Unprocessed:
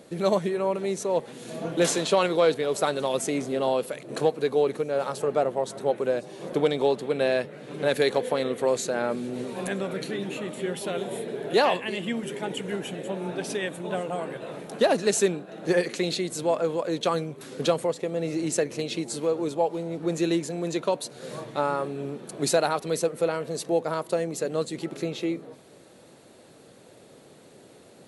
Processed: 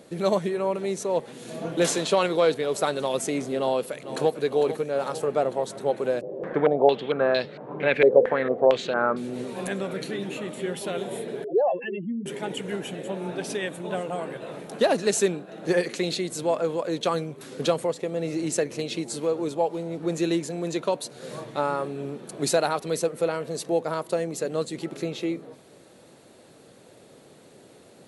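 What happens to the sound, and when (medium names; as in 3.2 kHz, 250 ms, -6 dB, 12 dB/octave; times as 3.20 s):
3.58–4.41 s: echo throw 450 ms, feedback 70%, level -11.5 dB
6.21–9.17 s: step-sequenced low-pass 4.4 Hz 520–4300 Hz
11.44–12.26 s: spectral contrast enhancement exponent 3.4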